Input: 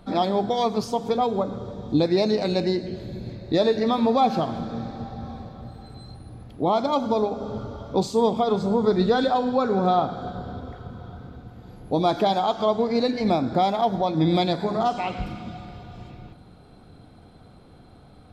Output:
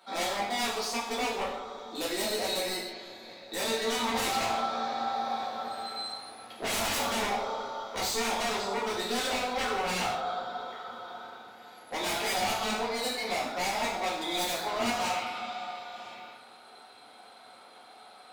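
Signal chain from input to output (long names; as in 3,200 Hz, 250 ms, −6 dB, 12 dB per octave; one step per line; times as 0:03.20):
high-pass filter 980 Hz 12 dB per octave
speech leveller 2 s
wave folding −29.5 dBFS
delay with a low-pass on its return 186 ms, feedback 57%, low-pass 1,800 Hz, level −14 dB
reverb whose tail is shaped and stops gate 200 ms falling, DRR −6.5 dB
level −3 dB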